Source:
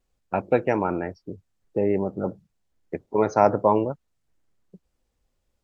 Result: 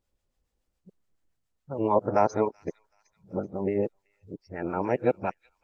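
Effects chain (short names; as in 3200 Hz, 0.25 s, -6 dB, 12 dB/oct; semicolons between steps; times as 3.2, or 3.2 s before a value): whole clip reversed; thin delay 0.38 s, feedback 40%, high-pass 4200 Hz, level -11 dB; harmonic tremolo 7.1 Hz, depth 50%, crossover 810 Hz; gain -2 dB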